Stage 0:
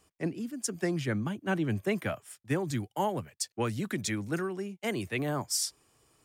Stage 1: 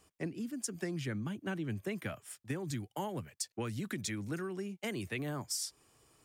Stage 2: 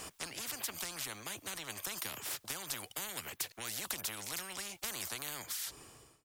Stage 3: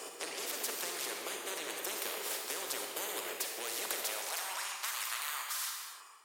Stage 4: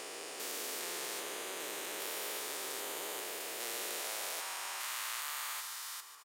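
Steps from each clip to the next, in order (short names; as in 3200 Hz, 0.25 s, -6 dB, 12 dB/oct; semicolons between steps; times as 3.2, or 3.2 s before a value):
dynamic EQ 730 Hz, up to -5 dB, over -43 dBFS, Q 0.87; compressor 4:1, threshold -35 dBFS, peak gain reduction 9 dB
ending faded out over 1.30 s; spectral compressor 10:1; gain +7.5 dB
high-pass sweep 420 Hz -> 1100 Hz, 3.79–4.72; reverb, pre-delay 33 ms, DRR 0 dB
stepped spectrum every 0.4 s; feedback echo 0.147 s, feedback 49%, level -11 dB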